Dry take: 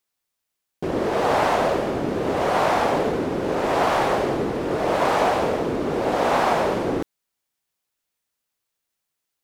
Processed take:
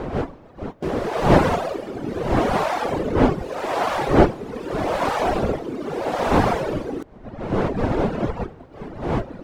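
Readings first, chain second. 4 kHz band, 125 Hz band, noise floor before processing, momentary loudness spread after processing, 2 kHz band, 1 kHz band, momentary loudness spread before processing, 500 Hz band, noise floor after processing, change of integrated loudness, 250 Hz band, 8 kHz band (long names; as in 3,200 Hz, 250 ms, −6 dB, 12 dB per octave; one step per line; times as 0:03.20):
−2.0 dB, +8.0 dB, −81 dBFS, 15 LU, −1.0 dB, −1.0 dB, 5 LU, 0.0 dB, −45 dBFS, −0.5 dB, +4.0 dB, −2.5 dB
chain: wind on the microphone 500 Hz −22 dBFS
reverb reduction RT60 1.4 s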